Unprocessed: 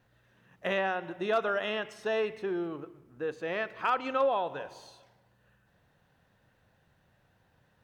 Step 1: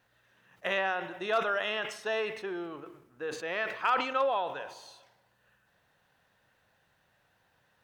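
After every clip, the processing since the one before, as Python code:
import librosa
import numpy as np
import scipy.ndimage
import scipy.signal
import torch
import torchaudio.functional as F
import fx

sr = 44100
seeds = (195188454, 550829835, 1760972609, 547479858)

y = fx.low_shelf(x, sr, hz=440.0, db=-12.0)
y = fx.sustainer(y, sr, db_per_s=86.0)
y = y * 10.0 ** (2.5 / 20.0)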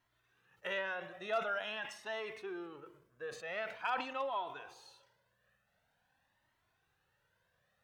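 y = fx.comb_cascade(x, sr, direction='rising', hz=0.46)
y = y * 10.0 ** (-3.5 / 20.0)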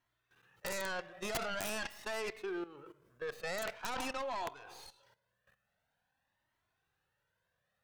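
y = fx.tracing_dist(x, sr, depth_ms=0.37)
y = fx.level_steps(y, sr, step_db=15)
y = (np.mod(10.0 ** (35.5 / 20.0) * y + 1.0, 2.0) - 1.0) / 10.0 ** (35.5 / 20.0)
y = y * 10.0 ** (7.0 / 20.0)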